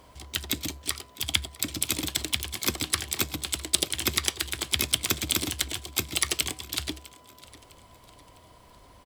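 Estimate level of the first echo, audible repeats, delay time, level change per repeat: -21.0 dB, 2, 0.655 s, -7.5 dB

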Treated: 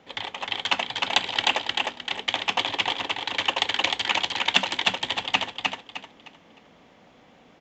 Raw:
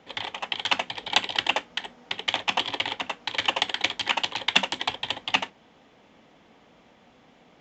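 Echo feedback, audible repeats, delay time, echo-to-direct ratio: 30%, 4, 0.307 s, -2.5 dB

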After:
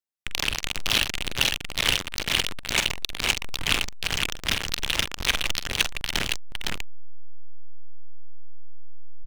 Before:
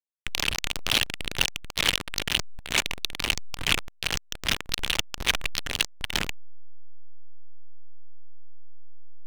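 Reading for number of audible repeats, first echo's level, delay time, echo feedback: 2, -12.5 dB, 45 ms, no steady repeat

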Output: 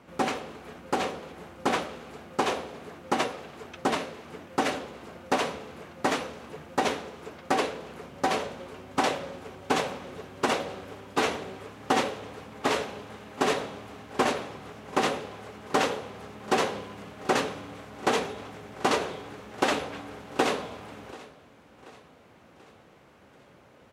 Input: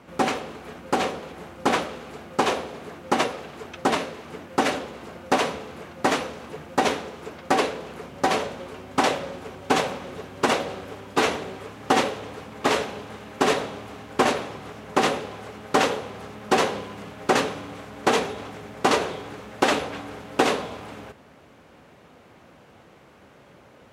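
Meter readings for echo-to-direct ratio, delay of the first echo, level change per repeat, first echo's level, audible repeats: -19.0 dB, 0.735 s, -5.5 dB, -20.5 dB, 3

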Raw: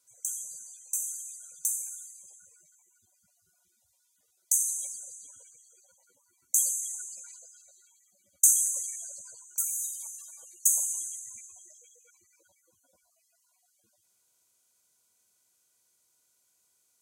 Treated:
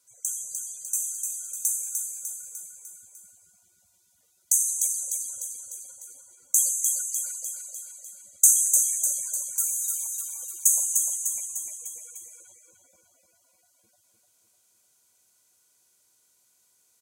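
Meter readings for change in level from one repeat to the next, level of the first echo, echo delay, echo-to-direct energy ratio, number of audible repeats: -5.0 dB, -4.5 dB, 0.3 s, -3.0 dB, 5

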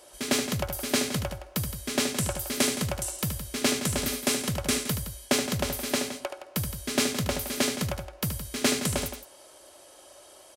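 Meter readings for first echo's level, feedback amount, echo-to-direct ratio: -8.0 dB, no steady repeat, -6.5 dB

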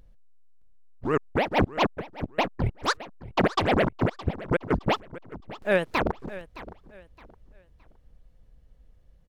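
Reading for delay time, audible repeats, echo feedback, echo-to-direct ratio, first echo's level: 0.616 s, 2, 29%, -16.0 dB, -16.5 dB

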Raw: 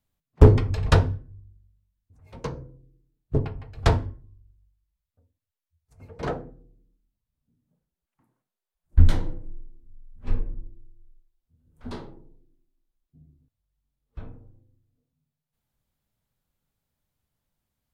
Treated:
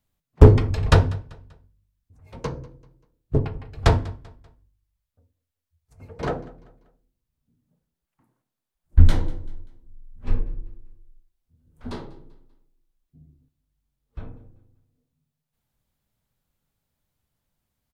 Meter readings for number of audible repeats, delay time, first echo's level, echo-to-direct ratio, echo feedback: 2, 0.194 s, -22.0 dB, -21.5 dB, 39%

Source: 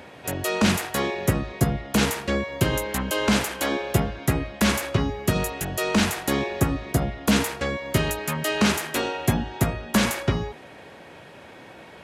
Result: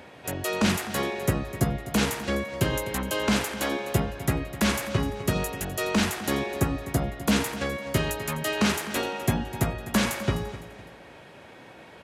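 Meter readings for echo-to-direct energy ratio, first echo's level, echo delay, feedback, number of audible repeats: -14.0 dB, -14.5 dB, 0.254 s, 35%, 3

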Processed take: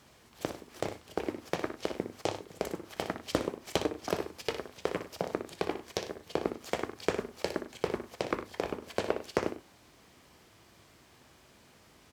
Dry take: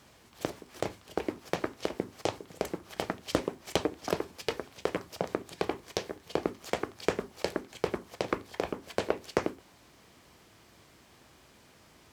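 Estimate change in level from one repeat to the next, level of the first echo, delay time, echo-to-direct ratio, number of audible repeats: no steady repeat, -9.5 dB, 60 ms, -8.5 dB, 2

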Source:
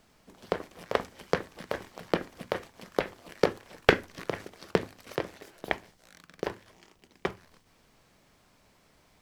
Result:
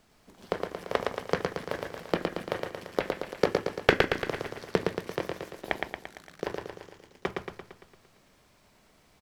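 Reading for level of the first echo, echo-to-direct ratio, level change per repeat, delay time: -3.5 dB, -2.0 dB, -5.0 dB, 0.114 s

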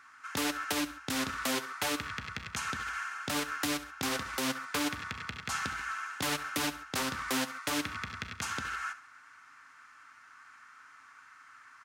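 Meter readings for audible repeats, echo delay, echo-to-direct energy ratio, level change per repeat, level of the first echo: 2, 68 ms, -15.0 dB, -7.5 dB, -15.5 dB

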